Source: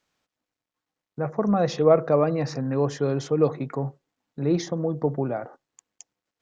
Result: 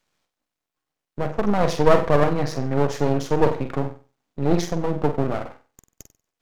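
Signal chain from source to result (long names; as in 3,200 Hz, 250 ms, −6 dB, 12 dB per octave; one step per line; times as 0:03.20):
flutter between parallel walls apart 8.1 metres, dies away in 0.35 s
half-wave rectification
level +6 dB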